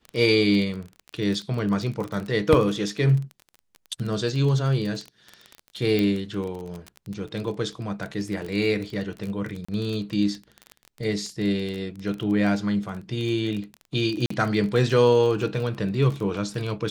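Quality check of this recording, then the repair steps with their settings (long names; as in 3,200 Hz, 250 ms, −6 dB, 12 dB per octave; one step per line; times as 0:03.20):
surface crackle 22 per second −28 dBFS
0:05.99: click −13 dBFS
0:09.65–0:09.69: drop-out 35 ms
0:14.26–0:14.30: drop-out 44 ms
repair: click removal
repair the gap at 0:09.65, 35 ms
repair the gap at 0:14.26, 44 ms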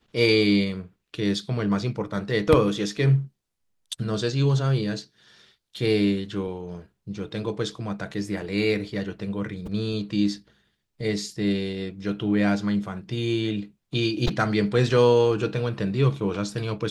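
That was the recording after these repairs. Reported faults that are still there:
none of them is left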